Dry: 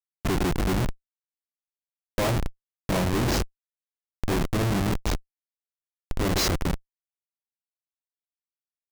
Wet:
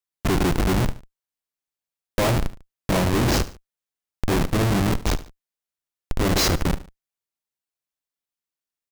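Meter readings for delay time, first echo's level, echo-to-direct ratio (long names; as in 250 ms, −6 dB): 73 ms, −16.5 dB, −16.0 dB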